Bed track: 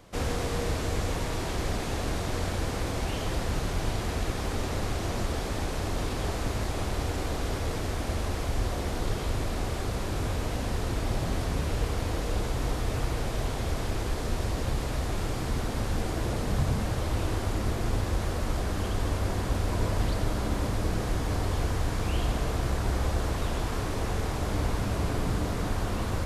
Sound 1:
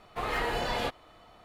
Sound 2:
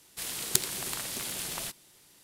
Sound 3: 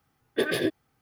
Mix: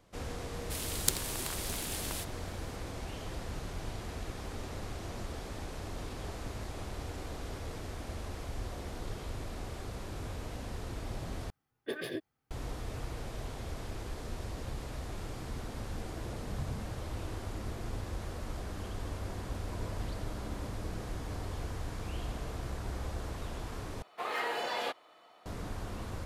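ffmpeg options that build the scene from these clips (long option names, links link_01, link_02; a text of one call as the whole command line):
ffmpeg -i bed.wav -i cue0.wav -i cue1.wav -i cue2.wav -filter_complex "[0:a]volume=-10.5dB[link_01];[1:a]highpass=370[link_02];[link_01]asplit=3[link_03][link_04][link_05];[link_03]atrim=end=11.504[link_06];[3:a]atrim=end=1.01,asetpts=PTS-STARTPTS,volume=-12dB[link_07];[link_04]atrim=start=12.506:end=24.024[link_08];[link_02]atrim=end=1.44,asetpts=PTS-STARTPTS,volume=-3dB[link_09];[link_05]atrim=start=25.456[link_10];[2:a]atrim=end=2.23,asetpts=PTS-STARTPTS,volume=-3.5dB,afade=type=in:duration=0.004:curve=hsin,afade=type=out:start_time=2.226:duration=0.004:curve=hsin,adelay=530[link_11];[link_06][link_07]acrossfade=duration=0.004:curve1=hsin:curve2=hsin[link_12];[link_12][link_08]acrossfade=duration=0.004:curve1=hsin:curve2=hsin[link_13];[link_13][link_09]acrossfade=duration=0.004:curve1=hsin:curve2=hsin[link_14];[link_14][link_10]acrossfade=duration=0.004:curve1=hsin:curve2=hsin[link_15];[link_15][link_11]amix=inputs=2:normalize=0" out.wav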